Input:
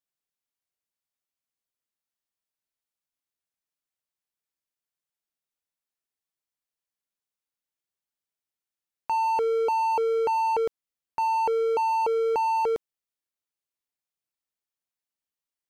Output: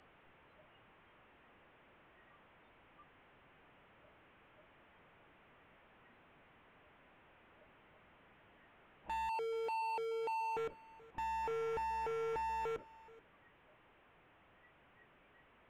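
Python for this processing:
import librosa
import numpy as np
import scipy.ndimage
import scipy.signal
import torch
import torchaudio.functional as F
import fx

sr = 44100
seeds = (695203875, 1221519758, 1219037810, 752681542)

p1 = fx.delta_mod(x, sr, bps=16000, step_db=-47.5)
p2 = fx.lowpass(p1, sr, hz=1400.0, slope=6)
p3 = fx.noise_reduce_blind(p2, sr, reduce_db=15)
p4 = fx.highpass(p3, sr, hz=700.0, slope=12, at=(9.29, 10.57))
p5 = fx.rider(p4, sr, range_db=10, speed_s=0.5)
p6 = p4 + F.gain(torch.from_numpy(p5), -0.5).numpy()
p7 = np.clip(p6, -10.0 ** (-37.5 / 20.0), 10.0 ** (-37.5 / 20.0))
y = p7 + 10.0 ** (-21.0 / 20.0) * np.pad(p7, (int(429 * sr / 1000.0), 0))[:len(p7)]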